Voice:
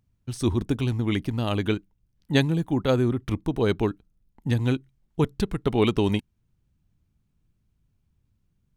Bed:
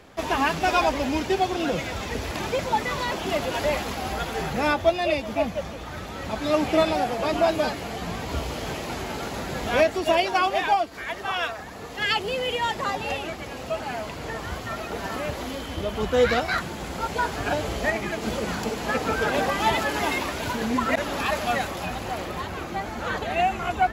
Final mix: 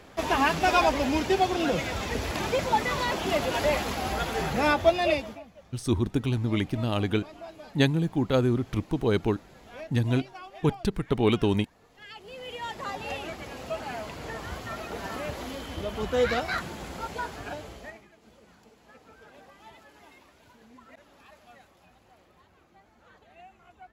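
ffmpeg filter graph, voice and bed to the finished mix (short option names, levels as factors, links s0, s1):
-filter_complex "[0:a]adelay=5450,volume=0.841[s0];[1:a]volume=7.08,afade=t=out:st=5.11:d=0.29:silence=0.0841395,afade=t=in:st=12.13:d=1.16:silence=0.133352,afade=t=out:st=16.69:d=1.39:silence=0.0630957[s1];[s0][s1]amix=inputs=2:normalize=0"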